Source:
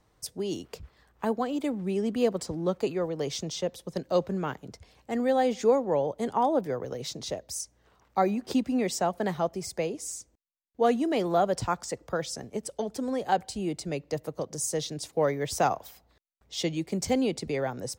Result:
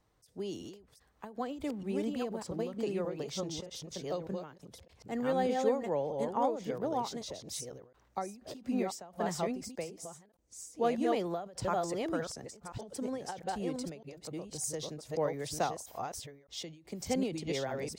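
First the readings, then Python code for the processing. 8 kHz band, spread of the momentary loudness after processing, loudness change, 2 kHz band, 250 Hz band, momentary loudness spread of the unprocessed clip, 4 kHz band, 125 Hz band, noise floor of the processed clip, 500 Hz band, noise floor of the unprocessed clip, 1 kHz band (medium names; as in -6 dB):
-6.0 dB, 14 LU, -6.5 dB, -6.5 dB, -6.5 dB, 10 LU, -6.0 dB, -6.5 dB, -68 dBFS, -6.5 dB, -67 dBFS, -7.0 dB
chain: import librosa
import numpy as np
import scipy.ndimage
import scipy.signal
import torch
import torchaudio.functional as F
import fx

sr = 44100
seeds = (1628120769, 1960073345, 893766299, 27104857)

y = fx.reverse_delay(x, sr, ms=610, wet_db=-2)
y = fx.end_taper(y, sr, db_per_s=110.0)
y = y * 10.0 ** (-6.5 / 20.0)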